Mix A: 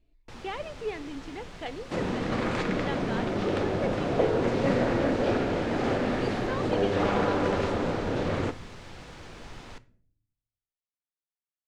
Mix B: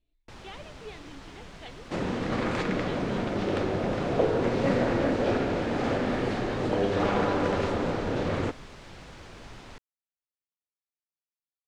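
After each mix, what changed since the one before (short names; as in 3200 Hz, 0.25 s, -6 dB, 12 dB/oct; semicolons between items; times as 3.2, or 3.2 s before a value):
speech: add ladder low-pass 4200 Hz, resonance 60%; first sound: send off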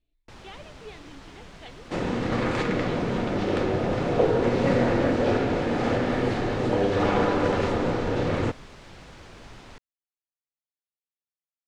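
second sound: send +10.5 dB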